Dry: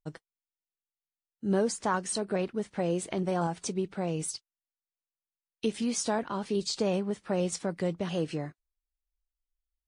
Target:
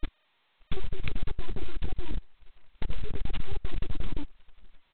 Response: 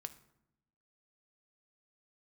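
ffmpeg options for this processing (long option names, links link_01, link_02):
-filter_complex "[0:a]afftfilt=real='real(if(lt(b,272),68*(eq(floor(b/68),0)*2+eq(floor(b/68),1)*3+eq(floor(b/68),2)*0+eq(floor(b/68),3)*1)+mod(b,68),b),0)':imag='imag(if(lt(b,272),68*(eq(floor(b/68),0)*2+eq(floor(b/68),1)*3+eq(floor(b/68),2)*0+eq(floor(b/68),3)*1)+mod(b,68),b),0)':win_size=2048:overlap=0.75,aeval=exprs='sgn(val(0))*max(abs(val(0))-0.00282,0)':channel_layout=same,alimiter=limit=-24dB:level=0:latency=1:release=37,asplit=2[link_01][link_02];[link_02]adelay=1152,lowpass=frequency=1000:poles=1,volume=-7dB,asplit=2[link_03][link_04];[link_04]adelay=1152,lowpass=frequency=1000:poles=1,volume=0.28,asplit=2[link_05][link_06];[link_06]adelay=1152,lowpass=frequency=1000:poles=1,volume=0.28[link_07];[link_03][link_05][link_07]amix=inputs=3:normalize=0[link_08];[link_01][link_08]amix=inputs=2:normalize=0,aeval=exprs='0.075*(cos(1*acos(clip(val(0)/0.075,-1,1)))-cos(1*PI/2))+0.000422*(cos(2*acos(clip(val(0)/0.075,-1,1)))-cos(2*PI/2))+0.0133*(cos(3*acos(clip(val(0)/0.075,-1,1)))-cos(3*PI/2))+0.0119*(cos(8*acos(clip(val(0)/0.075,-1,1)))-cos(8*PI/2))':channel_layout=same,lowpass=frequency=1600:width=0.5412,lowpass=frequency=1600:width=1.3066,aemphasis=mode=reproduction:type=bsi,asetrate=88200,aresample=44100,anlmdn=2.51,volume=4.5dB" -ar 8000 -c:a adpcm_g726 -b:a 16k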